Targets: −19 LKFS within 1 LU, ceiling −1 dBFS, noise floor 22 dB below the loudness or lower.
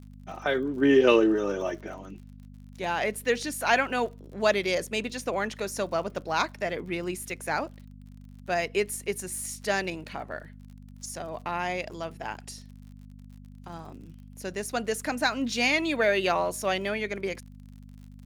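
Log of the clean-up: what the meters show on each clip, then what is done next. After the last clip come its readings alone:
crackle rate 47 per second; mains hum 50 Hz; hum harmonics up to 250 Hz; level of the hum −44 dBFS; integrated loudness −28.0 LKFS; sample peak −7.5 dBFS; target loudness −19.0 LKFS
→ click removal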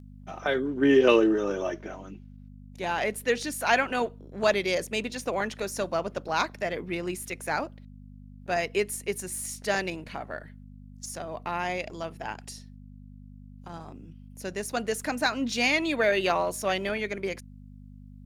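crackle rate 0.49 per second; mains hum 50 Hz; hum harmonics up to 250 Hz; level of the hum −45 dBFS
→ hum removal 50 Hz, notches 5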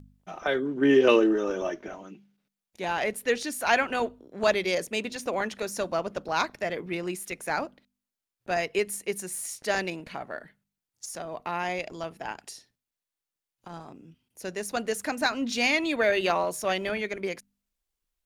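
mains hum none found; integrated loudness −28.0 LKFS; sample peak −7.5 dBFS; target loudness −19.0 LKFS
→ level +9 dB
brickwall limiter −1 dBFS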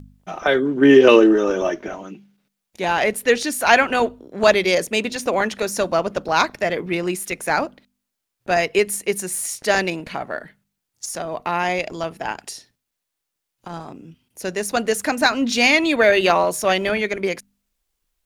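integrated loudness −19.0 LKFS; sample peak −1.0 dBFS; background noise floor −80 dBFS

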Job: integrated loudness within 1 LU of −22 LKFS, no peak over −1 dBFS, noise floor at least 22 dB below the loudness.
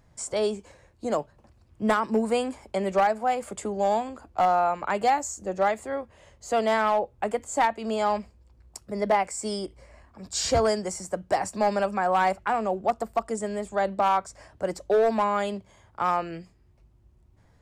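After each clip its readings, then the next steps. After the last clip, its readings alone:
share of clipped samples 0.8%; peaks flattened at −15.5 dBFS; integrated loudness −26.5 LKFS; sample peak −15.5 dBFS; target loudness −22.0 LKFS
→ clipped peaks rebuilt −15.5 dBFS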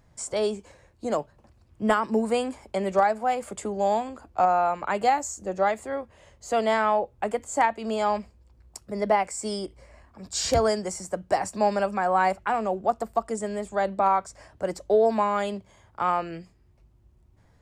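share of clipped samples 0.0%; integrated loudness −26.0 LKFS; sample peak −7.0 dBFS; target loudness −22.0 LKFS
→ level +4 dB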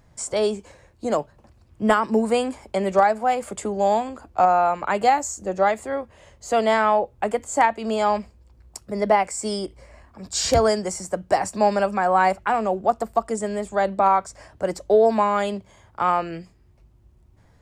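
integrated loudness −22.0 LKFS; sample peak −3.0 dBFS; background noise floor −56 dBFS

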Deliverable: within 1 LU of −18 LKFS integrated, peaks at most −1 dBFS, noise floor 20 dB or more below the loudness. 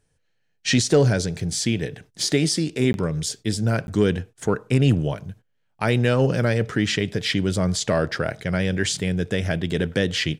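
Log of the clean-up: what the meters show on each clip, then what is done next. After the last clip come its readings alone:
number of dropouts 2; longest dropout 11 ms; integrated loudness −22.5 LKFS; sample peak −6.0 dBFS; target loudness −18.0 LKFS
→ repair the gap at 0:02.93/0:03.87, 11 ms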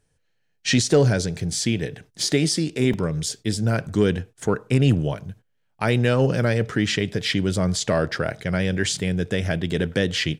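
number of dropouts 0; integrated loudness −22.5 LKFS; sample peak −6.0 dBFS; target loudness −18.0 LKFS
→ level +4.5 dB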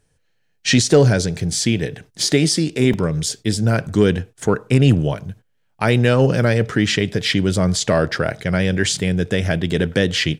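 integrated loudness −18.0 LKFS; sample peak −1.5 dBFS; background noise floor −65 dBFS

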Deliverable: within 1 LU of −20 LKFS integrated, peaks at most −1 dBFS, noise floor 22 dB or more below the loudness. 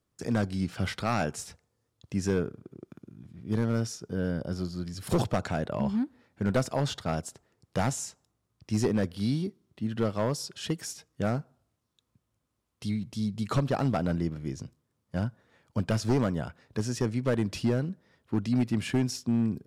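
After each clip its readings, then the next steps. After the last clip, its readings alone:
share of clipped samples 0.9%; peaks flattened at −19.0 dBFS; integrated loudness −30.5 LKFS; sample peak −19.0 dBFS; target loudness −20.0 LKFS
→ clipped peaks rebuilt −19 dBFS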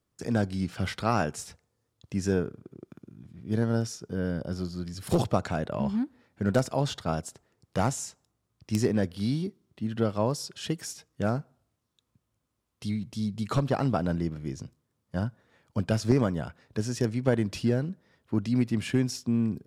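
share of clipped samples 0.0%; integrated loudness −30.0 LKFS; sample peak −10.0 dBFS; target loudness −20.0 LKFS
→ level +10 dB
brickwall limiter −1 dBFS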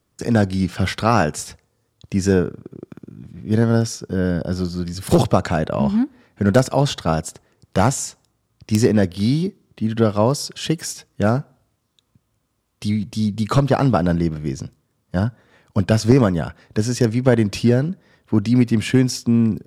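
integrated loudness −20.0 LKFS; sample peak −1.0 dBFS; background noise floor −69 dBFS

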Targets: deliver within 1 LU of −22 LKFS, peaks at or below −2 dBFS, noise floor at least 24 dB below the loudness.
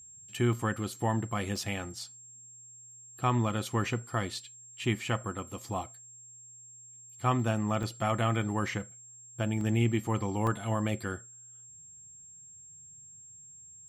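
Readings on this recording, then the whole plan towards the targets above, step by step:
number of dropouts 5; longest dropout 1.7 ms; interfering tone 7,500 Hz; level of the tone −49 dBFS; integrated loudness −32.0 LKFS; sample peak −16.5 dBFS; target loudness −22.0 LKFS
→ repair the gap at 0:00.53/0:01.56/0:07.83/0:09.61/0:10.47, 1.7 ms
notch filter 7,500 Hz, Q 30
level +10 dB

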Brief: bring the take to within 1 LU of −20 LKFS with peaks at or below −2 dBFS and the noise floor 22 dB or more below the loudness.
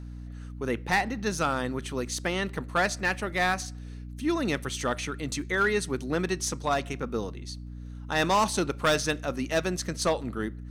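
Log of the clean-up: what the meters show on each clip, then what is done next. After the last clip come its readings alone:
share of clipped samples 0.5%; peaks flattened at −17.5 dBFS; mains hum 60 Hz; hum harmonics up to 300 Hz; level of the hum −37 dBFS; integrated loudness −28.5 LKFS; sample peak −17.5 dBFS; target loudness −20.0 LKFS
→ clipped peaks rebuilt −17.5 dBFS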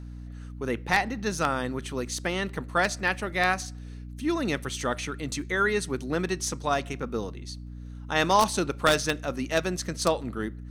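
share of clipped samples 0.0%; mains hum 60 Hz; hum harmonics up to 300 Hz; level of the hum −37 dBFS
→ hum removal 60 Hz, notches 5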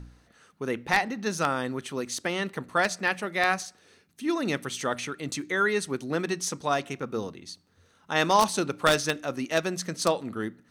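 mains hum none found; integrated loudness −28.0 LKFS; sample peak −8.0 dBFS; target loudness −20.0 LKFS
→ level +8 dB
brickwall limiter −2 dBFS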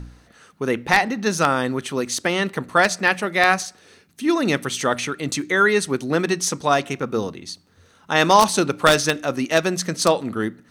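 integrated loudness −20.0 LKFS; sample peak −2.0 dBFS; background noise floor −55 dBFS

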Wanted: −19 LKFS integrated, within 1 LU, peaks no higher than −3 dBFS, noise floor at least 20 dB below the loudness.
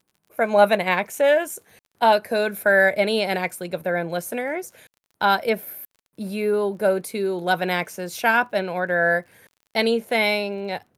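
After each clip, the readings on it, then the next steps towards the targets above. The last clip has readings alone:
crackle rate 34 per second; integrated loudness −22.0 LKFS; sample peak −4.0 dBFS; target loudness −19.0 LKFS
→ click removal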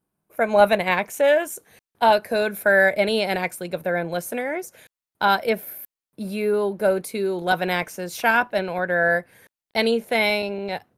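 crackle rate 0.27 per second; integrated loudness −22.0 LKFS; sample peak −4.0 dBFS; target loudness −19.0 LKFS
→ level +3 dB
brickwall limiter −3 dBFS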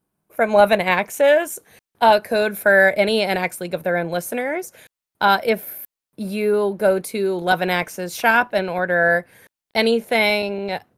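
integrated loudness −19.0 LKFS; sample peak −3.0 dBFS; background noise floor −88 dBFS

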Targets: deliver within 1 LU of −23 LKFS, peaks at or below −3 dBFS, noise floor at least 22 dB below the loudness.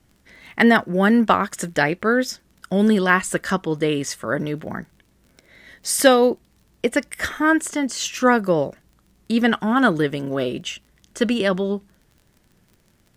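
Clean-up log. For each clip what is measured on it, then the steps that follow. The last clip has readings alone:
crackle rate 27 per second; integrated loudness −20.0 LKFS; sample peak −2.0 dBFS; target loudness −23.0 LKFS
→ click removal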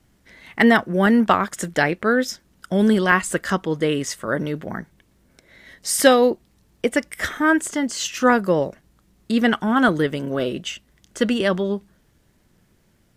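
crackle rate 0 per second; integrated loudness −20.0 LKFS; sample peak −2.0 dBFS; target loudness −23.0 LKFS
→ level −3 dB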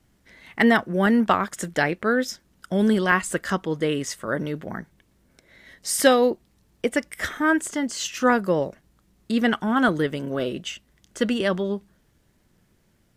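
integrated loudness −23.0 LKFS; sample peak −5.0 dBFS; background noise floor −64 dBFS

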